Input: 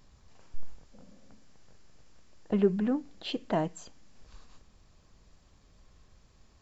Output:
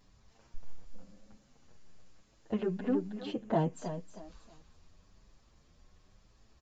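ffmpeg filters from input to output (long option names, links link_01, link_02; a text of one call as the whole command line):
ffmpeg -i in.wav -filter_complex "[0:a]asettb=1/sr,asplit=3[link_01][link_02][link_03];[link_01]atrim=end=3.254[link_04];[link_02]atrim=start=3.25:end=3.73,asetpts=PTS-STARTPTS,afade=type=in:duration=0.004:curve=qsin,afade=type=out:start_time=0.476:duration=0.004:curve=qsin,equalizer=frequency=125:width_type=o:width=1:gain=8,equalizer=frequency=500:width_type=o:width=1:gain=4,equalizer=frequency=4000:width_type=o:width=1:gain=-12[link_05];[link_03]atrim=start=3.726[link_06];[link_04][link_05]acrossfade=duration=0.004:curve1=hsin:curve2=qsin[link_07];[link_07][link_06]acrossfade=duration=0.004:curve1=qsin:curve2=hsin,asplit=2[link_08][link_09];[link_09]aecho=0:1:317|634|951:0.316|0.0854|0.0231[link_10];[link_08][link_10]amix=inputs=2:normalize=0,aresample=16000,aresample=44100,asplit=2[link_11][link_12];[link_12]adelay=7.6,afreqshift=0.98[link_13];[link_11][link_13]amix=inputs=2:normalize=1" out.wav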